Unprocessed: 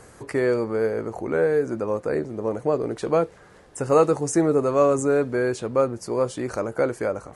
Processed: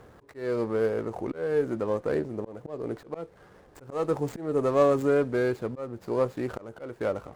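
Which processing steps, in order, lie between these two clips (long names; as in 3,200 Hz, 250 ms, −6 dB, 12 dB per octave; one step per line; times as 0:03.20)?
running median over 15 samples
volume swells 283 ms
windowed peak hold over 3 samples
level −2.5 dB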